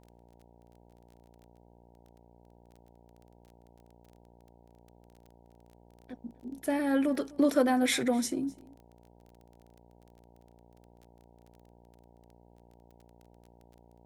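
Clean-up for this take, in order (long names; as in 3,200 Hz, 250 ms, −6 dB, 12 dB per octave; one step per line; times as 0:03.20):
click removal
hum removal 58.8 Hz, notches 16
echo removal 254 ms −23 dB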